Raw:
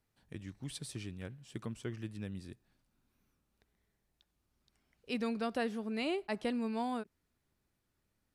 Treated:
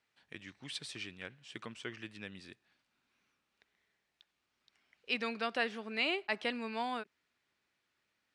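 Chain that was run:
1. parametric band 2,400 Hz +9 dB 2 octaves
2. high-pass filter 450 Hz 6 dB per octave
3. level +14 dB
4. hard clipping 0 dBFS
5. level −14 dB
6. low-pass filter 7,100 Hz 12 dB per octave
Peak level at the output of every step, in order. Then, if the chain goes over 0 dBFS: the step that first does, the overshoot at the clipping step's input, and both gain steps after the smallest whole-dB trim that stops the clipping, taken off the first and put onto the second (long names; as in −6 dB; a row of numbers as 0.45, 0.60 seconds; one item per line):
−18.0, −18.5, −4.5, −4.5, −18.5, −19.0 dBFS
no step passes full scale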